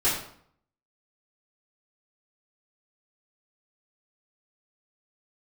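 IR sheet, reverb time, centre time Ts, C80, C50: 0.60 s, 42 ms, 7.0 dB, 4.0 dB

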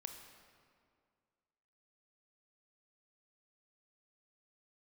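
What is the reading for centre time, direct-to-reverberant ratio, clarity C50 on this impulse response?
41 ms, 5.0 dB, 6.0 dB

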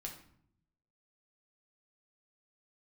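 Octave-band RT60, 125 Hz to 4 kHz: 1.2, 1.0, 0.70, 0.60, 0.55, 0.45 s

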